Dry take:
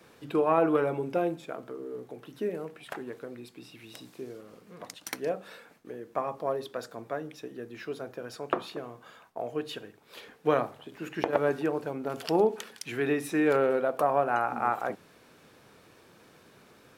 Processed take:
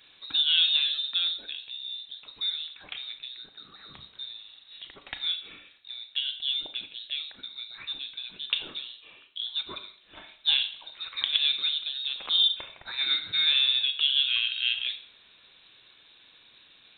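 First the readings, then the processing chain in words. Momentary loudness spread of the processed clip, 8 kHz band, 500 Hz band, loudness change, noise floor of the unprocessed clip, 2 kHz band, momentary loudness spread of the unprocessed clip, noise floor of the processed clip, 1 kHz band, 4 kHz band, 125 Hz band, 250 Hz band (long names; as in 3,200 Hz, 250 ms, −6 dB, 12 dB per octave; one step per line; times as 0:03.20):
20 LU, below −30 dB, −29.5 dB, +4.0 dB, −58 dBFS, +2.5 dB, 20 LU, −58 dBFS, −19.5 dB, +24.5 dB, below −15 dB, −25.5 dB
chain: four-comb reverb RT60 0.54 s, combs from 27 ms, DRR 9 dB
voice inversion scrambler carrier 4,000 Hz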